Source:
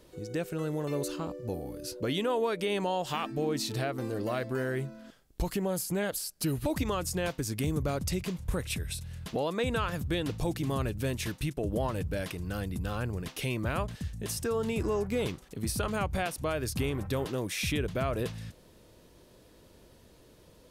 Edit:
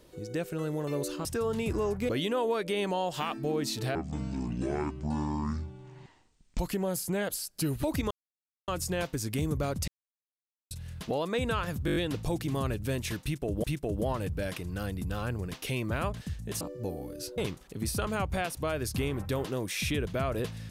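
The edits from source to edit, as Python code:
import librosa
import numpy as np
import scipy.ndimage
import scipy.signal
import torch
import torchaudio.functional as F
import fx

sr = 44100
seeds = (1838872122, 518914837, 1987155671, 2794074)

y = fx.edit(x, sr, fx.swap(start_s=1.25, length_s=0.77, other_s=14.35, other_length_s=0.84),
    fx.speed_span(start_s=3.88, length_s=1.53, speed=0.58),
    fx.insert_silence(at_s=6.93, length_s=0.57),
    fx.silence(start_s=8.13, length_s=0.83),
    fx.stutter(start_s=10.11, slice_s=0.02, count=6),
    fx.repeat(start_s=11.38, length_s=0.41, count=2), tone=tone)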